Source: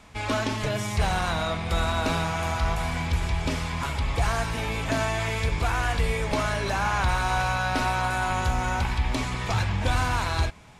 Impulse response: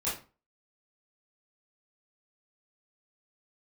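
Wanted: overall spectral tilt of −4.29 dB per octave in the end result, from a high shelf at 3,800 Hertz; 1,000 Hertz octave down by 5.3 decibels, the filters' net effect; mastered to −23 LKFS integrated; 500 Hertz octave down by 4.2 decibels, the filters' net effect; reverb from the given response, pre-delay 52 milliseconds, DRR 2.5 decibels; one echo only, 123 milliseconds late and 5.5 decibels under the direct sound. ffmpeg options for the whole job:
-filter_complex "[0:a]equalizer=frequency=500:width_type=o:gain=-3.5,equalizer=frequency=1000:width_type=o:gain=-6,highshelf=frequency=3800:gain=4,aecho=1:1:123:0.531,asplit=2[link_01][link_02];[1:a]atrim=start_sample=2205,adelay=52[link_03];[link_02][link_03]afir=irnorm=-1:irlink=0,volume=-9dB[link_04];[link_01][link_04]amix=inputs=2:normalize=0,volume=1.5dB"

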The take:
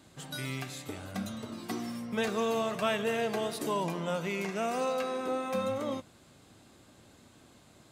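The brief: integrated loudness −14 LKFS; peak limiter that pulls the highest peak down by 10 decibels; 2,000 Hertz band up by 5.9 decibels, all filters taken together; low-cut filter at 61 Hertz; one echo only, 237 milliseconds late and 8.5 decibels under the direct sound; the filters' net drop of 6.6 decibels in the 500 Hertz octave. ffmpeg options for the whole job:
ffmpeg -i in.wav -af "highpass=61,equalizer=frequency=500:width_type=o:gain=-8.5,equalizer=frequency=2000:width_type=o:gain=8,alimiter=level_in=0.5dB:limit=-24dB:level=0:latency=1,volume=-0.5dB,aecho=1:1:237:0.376,volume=21dB" out.wav

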